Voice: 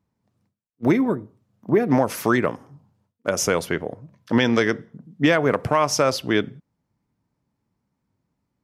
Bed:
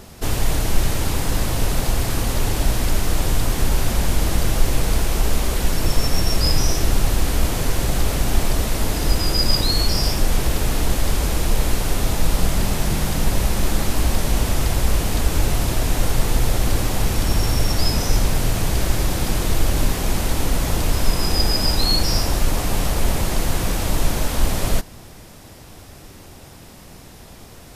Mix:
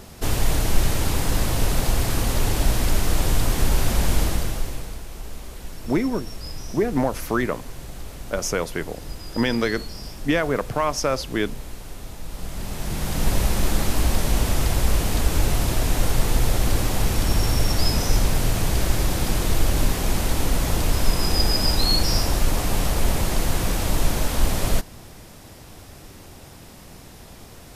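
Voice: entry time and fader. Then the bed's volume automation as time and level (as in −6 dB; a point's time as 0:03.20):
5.05 s, −3.5 dB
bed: 0:04.20 −1 dB
0:05.00 −16.5 dB
0:12.25 −16.5 dB
0:13.29 −1.5 dB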